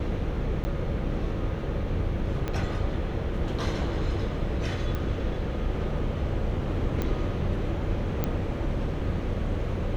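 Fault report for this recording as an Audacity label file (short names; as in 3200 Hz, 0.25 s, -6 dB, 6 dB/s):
0.640000	0.650000	gap 10 ms
2.480000	2.480000	pop -17 dBFS
4.950000	4.950000	pop -19 dBFS
7.020000	7.020000	pop -16 dBFS
8.240000	8.240000	pop -13 dBFS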